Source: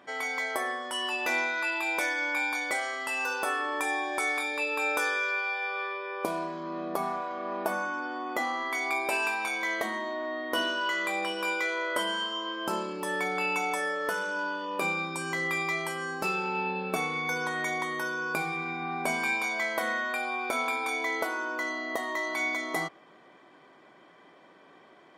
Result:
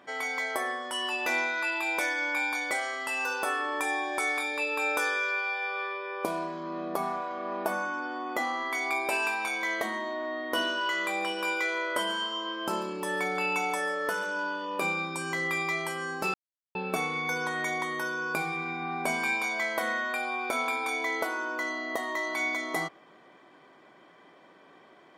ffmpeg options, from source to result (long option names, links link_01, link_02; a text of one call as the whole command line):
ffmpeg -i in.wav -filter_complex "[0:a]asettb=1/sr,asplit=3[link_01][link_02][link_03];[link_01]atrim=end=10.644[link_04];[link_02]atrim=start=10.64:end=14.26,asetpts=PTS-STARTPTS,afade=type=in:duration=0.004:curve=qsin,afade=type=out:start_time=3.616:duration=0.004:curve=qsin,aecho=1:1:140:0.133,atrim=end_sample=159642[link_05];[link_03]atrim=start=14.256[link_06];[link_04][link_05]acrossfade=duration=0.004:curve1=hsin:curve2=qsin[link_07];[link_07][link_06]acrossfade=duration=0.004:curve1=qsin:curve2=hsin,asplit=3[link_08][link_09][link_10];[link_08]atrim=end=16.34,asetpts=PTS-STARTPTS,afade=type=out:start_time=16.336:duration=0.004:curve=hsin[link_11];[link_09]atrim=start=16.34:end=16.75,asetpts=PTS-STARTPTS,volume=0[link_12];[link_10]atrim=start=16.75,asetpts=PTS-STARTPTS,afade=type=in:duration=0.004:curve=hsin[link_13];[link_11][link_12][link_13]concat=n=3:v=0:a=1" out.wav